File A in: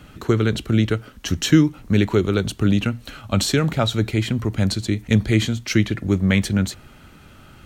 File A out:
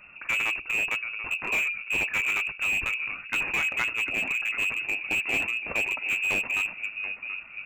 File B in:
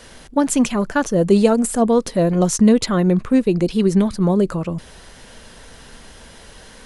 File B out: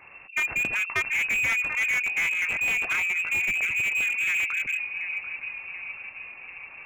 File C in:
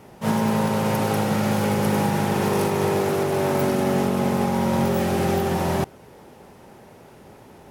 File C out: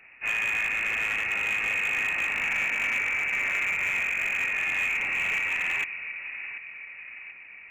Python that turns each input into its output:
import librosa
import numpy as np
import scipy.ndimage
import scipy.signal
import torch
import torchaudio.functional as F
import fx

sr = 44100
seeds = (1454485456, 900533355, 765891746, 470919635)

p1 = fx.tracing_dist(x, sr, depth_ms=0.39)
p2 = fx.hum_notches(p1, sr, base_hz=60, count=7)
p3 = p2 + fx.echo_tape(p2, sr, ms=735, feedback_pct=62, wet_db=-9, lp_hz=1100.0, drive_db=-1.0, wow_cents=40, dry=0)
p4 = fx.freq_invert(p3, sr, carrier_hz=2700)
p5 = fx.slew_limit(p4, sr, full_power_hz=310.0)
y = p5 * librosa.db_to_amplitude(-5.5)